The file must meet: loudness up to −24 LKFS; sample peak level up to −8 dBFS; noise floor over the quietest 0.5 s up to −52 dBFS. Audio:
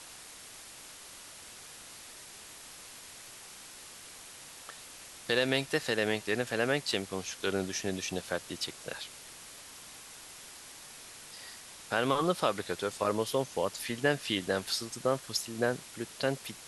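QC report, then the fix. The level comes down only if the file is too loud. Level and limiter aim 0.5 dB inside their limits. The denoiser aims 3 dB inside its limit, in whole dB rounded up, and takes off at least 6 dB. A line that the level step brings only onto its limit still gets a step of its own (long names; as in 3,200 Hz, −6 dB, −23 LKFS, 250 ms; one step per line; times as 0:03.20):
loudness −32.0 LKFS: in spec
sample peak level −13.0 dBFS: in spec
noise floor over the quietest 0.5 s −49 dBFS: out of spec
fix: broadband denoise 6 dB, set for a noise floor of −49 dBFS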